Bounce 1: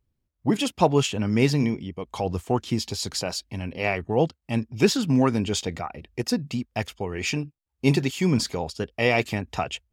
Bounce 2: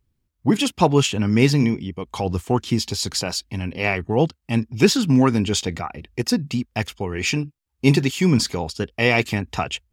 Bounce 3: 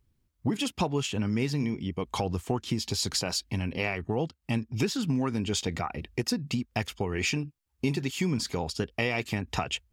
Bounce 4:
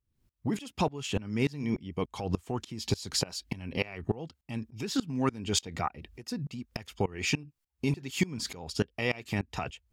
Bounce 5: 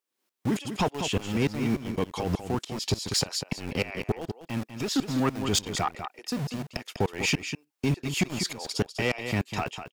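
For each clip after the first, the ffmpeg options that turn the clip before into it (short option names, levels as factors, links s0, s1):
-af "equalizer=f=600:w=1.8:g=-5,volume=1.78"
-af "acompressor=threshold=0.0501:ratio=5"
-filter_complex "[0:a]asplit=2[s0][s1];[s1]alimiter=limit=0.0794:level=0:latency=1:release=332,volume=1.06[s2];[s0][s2]amix=inputs=2:normalize=0,aeval=exprs='val(0)*pow(10,-23*if(lt(mod(-3.4*n/s,1),2*abs(-3.4)/1000),1-mod(-3.4*n/s,1)/(2*abs(-3.4)/1000),(mod(-3.4*n/s,1)-2*abs(-3.4)/1000)/(1-2*abs(-3.4)/1000))/20)':c=same"
-filter_complex "[0:a]acrossover=split=360|2000[s0][s1][s2];[s0]aeval=exprs='val(0)*gte(abs(val(0)),0.0133)':c=same[s3];[s3][s1][s2]amix=inputs=3:normalize=0,aecho=1:1:197:0.299,asoftclip=type=tanh:threshold=0.075,volume=1.88"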